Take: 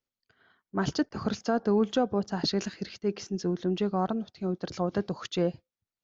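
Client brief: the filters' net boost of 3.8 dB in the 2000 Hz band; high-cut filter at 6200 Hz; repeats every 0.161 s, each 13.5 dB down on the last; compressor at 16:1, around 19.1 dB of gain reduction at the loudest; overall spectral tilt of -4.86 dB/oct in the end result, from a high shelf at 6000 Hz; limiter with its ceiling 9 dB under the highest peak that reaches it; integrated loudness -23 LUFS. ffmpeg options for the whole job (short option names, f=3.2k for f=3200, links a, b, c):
-af "lowpass=6.2k,equalizer=f=2k:t=o:g=5,highshelf=f=6k:g=4,acompressor=threshold=-39dB:ratio=16,alimiter=level_in=12.5dB:limit=-24dB:level=0:latency=1,volume=-12.5dB,aecho=1:1:161|322:0.211|0.0444,volume=24.5dB"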